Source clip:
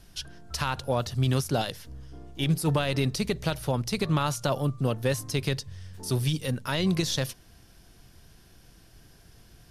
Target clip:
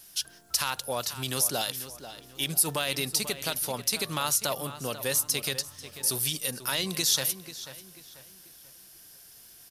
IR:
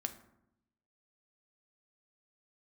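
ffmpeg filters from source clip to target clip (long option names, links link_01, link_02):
-filter_complex "[0:a]aemphasis=mode=production:type=riaa,asplit=2[link_01][link_02];[link_02]adelay=490,lowpass=frequency=3900:poles=1,volume=-12dB,asplit=2[link_03][link_04];[link_04]adelay=490,lowpass=frequency=3900:poles=1,volume=0.38,asplit=2[link_05][link_06];[link_06]adelay=490,lowpass=frequency=3900:poles=1,volume=0.38,asplit=2[link_07][link_08];[link_08]adelay=490,lowpass=frequency=3900:poles=1,volume=0.38[link_09];[link_03][link_05][link_07][link_09]amix=inputs=4:normalize=0[link_10];[link_01][link_10]amix=inputs=2:normalize=0,volume=-2.5dB"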